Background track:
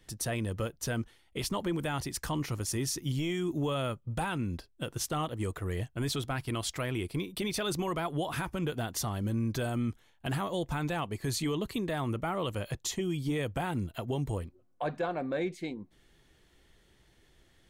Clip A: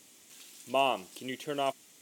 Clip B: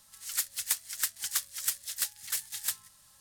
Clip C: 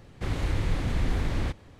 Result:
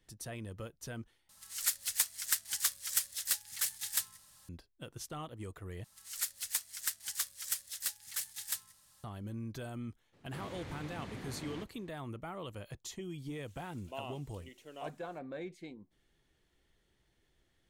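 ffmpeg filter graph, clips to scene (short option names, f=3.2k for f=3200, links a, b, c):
-filter_complex "[2:a]asplit=2[a][b];[0:a]volume=-10.5dB[c];[3:a]highpass=150[d];[c]asplit=3[e][f][g];[e]atrim=end=1.294[h];[a]atrim=end=3.2,asetpts=PTS-STARTPTS,volume=-1dB[i];[f]atrim=start=4.486:end=5.844[j];[b]atrim=end=3.2,asetpts=PTS-STARTPTS,volume=-5dB[k];[g]atrim=start=9.036[l];[d]atrim=end=1.79,asetpts=PTS-STARTPTS,volume=-12dB,afade=t=in:d=0.02,afade=t=out:st=1.77:d=0.02,adelay=10120[m];[1:a]atrim=end=2.01,asetpts=PTS-STARTPTS,volume=-16.5dB,afade=t=in:d=0.004:c=hsin,afade=t=out:st=2.006:d=0.004:c=hsin,adelay=13180[n];[h][i]acrossfade=d=0.004:c1=hsin:c2=hsin[o];[o][j]acrossfade=d=0.004:c1=hsin:c2=hsin[p];[p][k]acrossfade=d=0.004:c1=hsin:c2=hsin[q];[q][l]acrossfade=d=0.004:c1=hsin:c2=hsin[r];[r][m][n]amix=inputs=3:normalize=0"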